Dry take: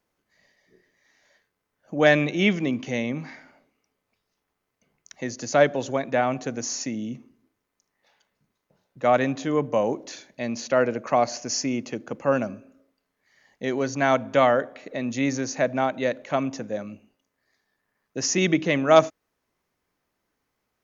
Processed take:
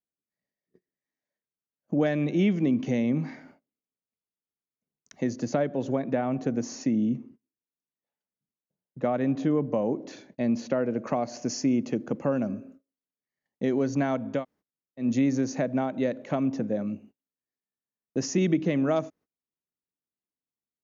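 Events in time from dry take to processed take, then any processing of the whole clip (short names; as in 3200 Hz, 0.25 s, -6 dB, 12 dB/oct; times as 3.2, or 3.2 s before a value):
5.33–10.96 LPF 3700 Hz 6 dB/oct
14.37–15.04 room tone, crossfade 0.16 s
16.46–16.88 air absorption 78 m
whole clip: compressor 3:1, threshold -27 dBFS; gate -55 dBFS, range -27 dB; bell 210 Hz +13 dB 3 oct; gain -5.5 dB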